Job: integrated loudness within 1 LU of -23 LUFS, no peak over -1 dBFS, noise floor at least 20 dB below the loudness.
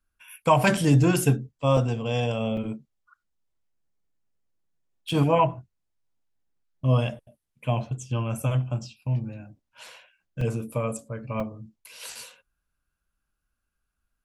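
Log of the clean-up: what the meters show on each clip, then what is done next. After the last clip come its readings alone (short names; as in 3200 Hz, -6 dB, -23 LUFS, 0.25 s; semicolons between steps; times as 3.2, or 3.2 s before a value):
dropouts 6; longest dropout 3.4 ms; loudness -25.5 LUFS; peak -7.5 dBFS; loudness target -23.0 LUFS
-> interpolate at 0.77/1.77/2.57/5.09/10.41/11.4, 3.4 ms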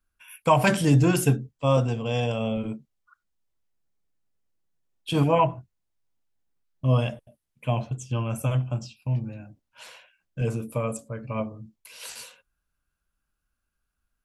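dropouts 0; loudness -25.5 LUFS; peak -7.5 dBFS; loudness target -23.0 LUFS
-> gain +2.5 dB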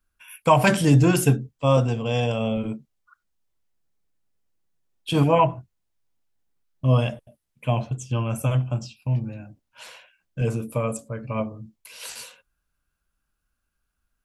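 loudness -23.0 LUFS; peak -5.0 dBFS; noise floor -78 dBFS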